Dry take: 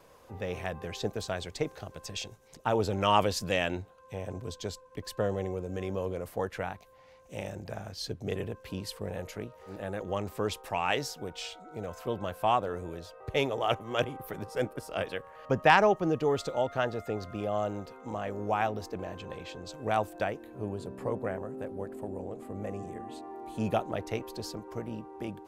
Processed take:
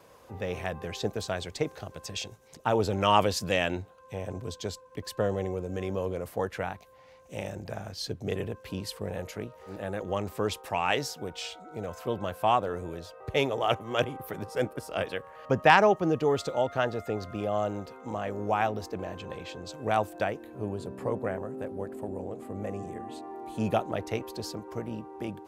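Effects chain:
high-pass filter 49 Hz
level +2 dB

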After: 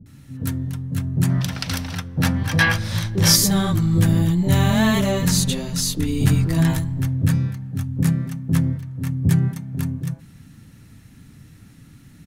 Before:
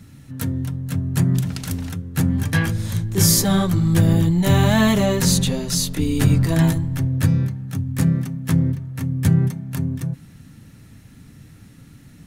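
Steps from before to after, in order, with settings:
multiband delay without the direct sound lows, highs 60 ms, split 540 Hz
gain on a spectral selection 0:01.29–0:03.36, 480–6,200 Hz +9 dB
level −1 dB

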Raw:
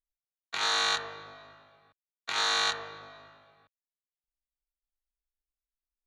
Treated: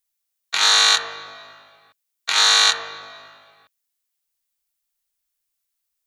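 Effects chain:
spectral tilt +3 dB per octave
level +8 dB

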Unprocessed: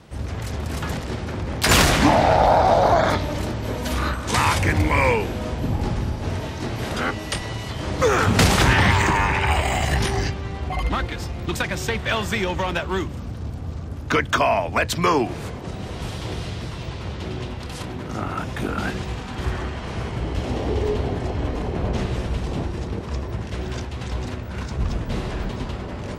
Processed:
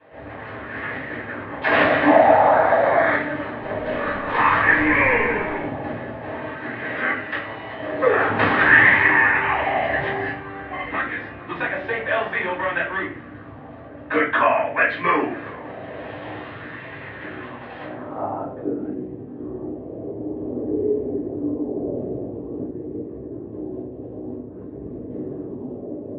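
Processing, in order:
low-shelf EQ 380 Hz −9 dB
low-pass filter sweep 1,800 Hz → 370 Hz, 0:17.83–0:18.77
loudspeaker in its box 190–3,700 Hz, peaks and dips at 260 Hz +8 dB, 960 Hz −5 dB, 1,500 Hz −6 dB, 2,300 Hz −4 dB
0:03.41–0:05.64: echo with shifted repeats 205 ms, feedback 47%, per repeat −46 Hz, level −4.5 dB
convolution reverb RT60 0.35 s, pre-delay 3 ms, DRR −9 dB
auto-filter bell 0.5 Hz 600–2,100 Hz +7 dB
level −12.5 dB

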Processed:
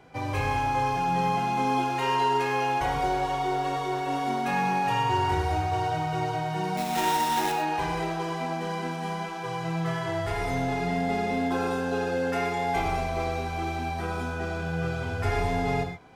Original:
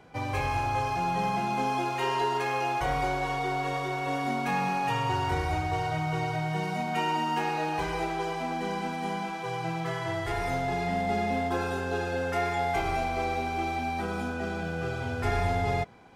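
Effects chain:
0:06.77–0:07.52: sample-rate reduction 4,600 Hz, jitter 20%
reverb whose tail is shaped and stops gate 150 ms flat, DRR 4 dB

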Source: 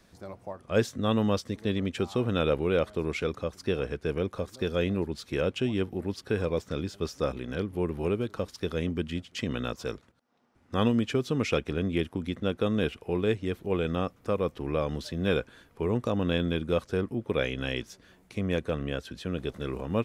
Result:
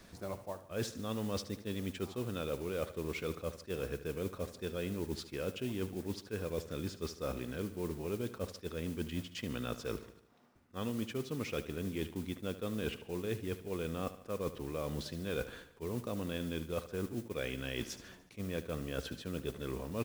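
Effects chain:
notch filter 800 Hz, Q 23
reversed playback
downward compressor 6 to 1, threshold −39 dBFS, peak gain reduction 18.5 dB
reversed playback
noise that follows the level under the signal 18 dB
on a send: repeating echo 74 ms, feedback 53%, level −14 dB
on the sum: level that may rise only so fast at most 460 dB per second
level +3.5 dB

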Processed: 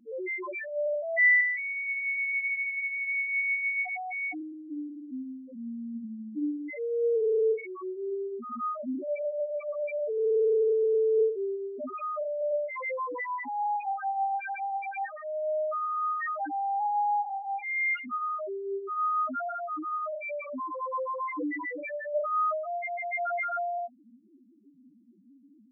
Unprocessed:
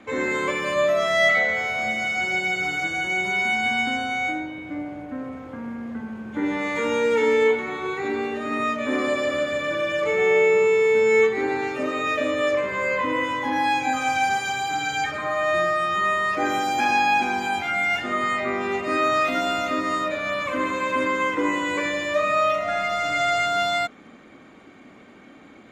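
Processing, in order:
spectral peaks only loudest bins 1
0:00.61–0:01.41: spectral tilt +3.5 dB per octave

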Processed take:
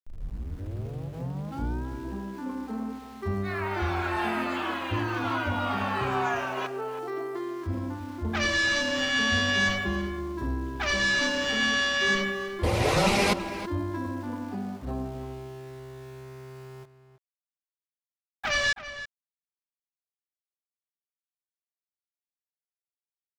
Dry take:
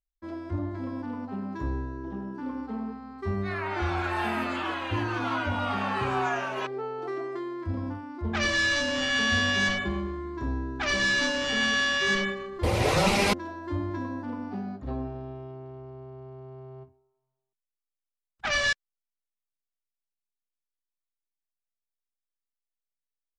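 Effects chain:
turntable start at the beginning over 1.88 s
centre clipping without the shift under −47 dBFS
slap from a distant wall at 56 metres, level −12 dB

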